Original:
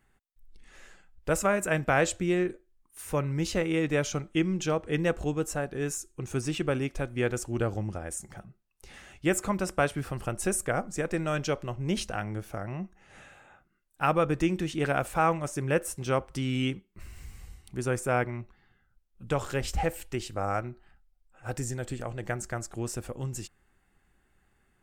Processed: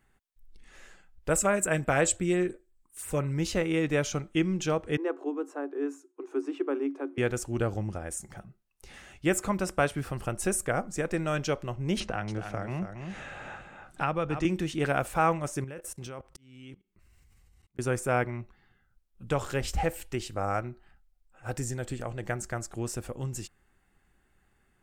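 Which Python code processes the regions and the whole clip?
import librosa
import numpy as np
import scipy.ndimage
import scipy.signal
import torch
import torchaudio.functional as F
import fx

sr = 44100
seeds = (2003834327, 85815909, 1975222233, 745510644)

y = fx.chain(x, sr, fx.peak_eq(hz=7900.0, db=11.0, octaves=0.23),
    fx.filter_lfo_notch(shape='sine', hz=5.8, low_hz=840.0, high_hz=6900.0, q=1.8), at=(1.3, 3.34))
y = fx.chain(y, sr, fx.cheby_ripple_highpass(hz=270.0, ripple_db=9),
    fx.tilt_eq(slope=-4.0), at=(4.97, 7.18))
y = fx.chain(y, sr, fx.air_absorb(metres=72.0),
    fx.echo_single(ms=278, db=-10.0),
    fx.band_squash(depth_pct=70), at=(12.0, 14.45))
y = fx.chain(y, sr, fx.level_steps(step_db=20),
    fx.auto_swell(attack_ms=590.0), at=(15.64, 17.79))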